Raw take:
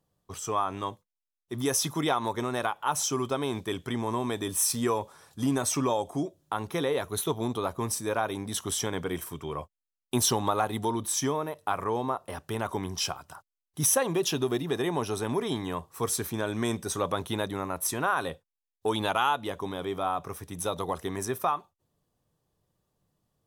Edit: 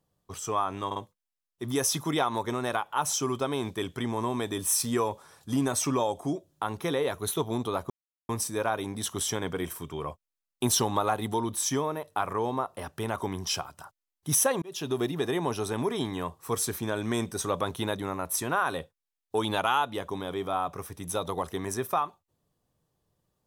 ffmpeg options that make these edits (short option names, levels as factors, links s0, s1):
-filter_complex "[0:a]asplit=5[s0][s1][s2][s3][s4];[s0]atrim=end=0.912[s5];[s1]atrim=start=0.858:end=0.912[s6];[s2]atrim=start=0.858:end=7.8,asetpts=PTS-STARTPTS,afade=t=out:st=6.938:d=0.004:c=hsin,apad=pad_dur=0.39[s7];[s3]atrim=start=7.8:end=14.13,asetpts=PTS-STARTPTS,afade=t=in:d=0.004:c=hsin,afade=t=out:st=6.326:d=0.004:c=hsin[s8];[s4]atrim=start=14.13,asetpts=PTS-STARTPTS,afade=t=in:d=0.37[s9];[s5][s6]acrossfade=d=0.004:c1=hsin:c2=hsin[s10];[s7][s8][s9]concat=n=3:v=0:a=1[s11];[s10][s11]acrossfade=d=0.004:c1=hsin:c2=hsin"